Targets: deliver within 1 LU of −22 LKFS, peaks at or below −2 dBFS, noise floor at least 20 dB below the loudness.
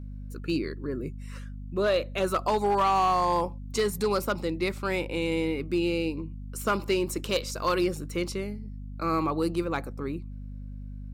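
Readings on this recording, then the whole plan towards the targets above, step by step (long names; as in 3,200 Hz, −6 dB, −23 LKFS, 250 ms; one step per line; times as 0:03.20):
share of clipped samples 0.6%; peaks flattened at −18.5 dBFS; mains hum 50 Hz; hum harmonics up to 250 Hz; level of the hum −36 dBFS; integrated loudness −28.5 LKFS; sample peak −18.5 dBFS; target loudness −22.0 LKFS
→ clipped peaks rebuilt −18.5 dBFS
hum removal 50 Hz, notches 5
level +6.5 dB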